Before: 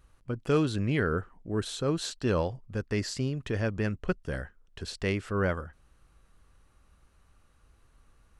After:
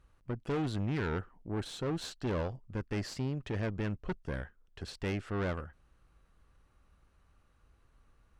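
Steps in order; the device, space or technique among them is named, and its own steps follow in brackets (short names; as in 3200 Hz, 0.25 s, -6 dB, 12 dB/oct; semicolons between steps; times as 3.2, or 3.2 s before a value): tube preamp driven hard (tube stage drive 29 dB, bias 0.65; high shelf 5600 Hz -9 dB)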